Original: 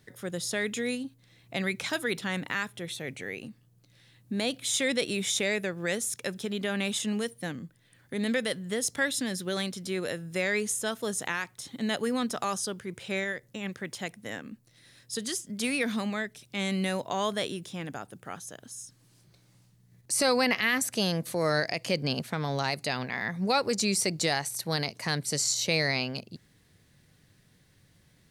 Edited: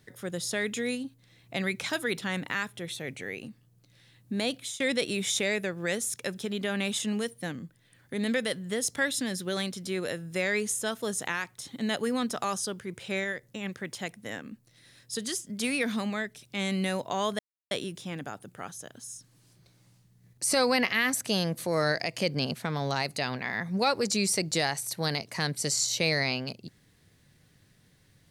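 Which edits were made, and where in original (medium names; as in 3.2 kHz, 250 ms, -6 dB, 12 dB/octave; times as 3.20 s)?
4.54–4.80 s: fade out, to -21.5 dB
17.39 s: insert silence 0.32 s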